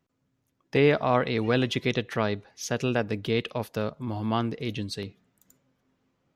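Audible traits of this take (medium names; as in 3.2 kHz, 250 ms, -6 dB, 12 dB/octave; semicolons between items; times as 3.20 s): noise floor -76 dBFS; spectral tilt -5.0 dB/octave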